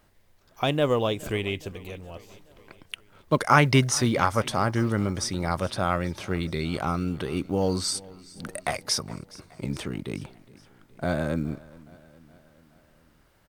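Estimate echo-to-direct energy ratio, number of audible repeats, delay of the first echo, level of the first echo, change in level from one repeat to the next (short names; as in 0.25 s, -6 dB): -20.0 dB, 3, 0.419 s, -21.5 dB, -4.5 dB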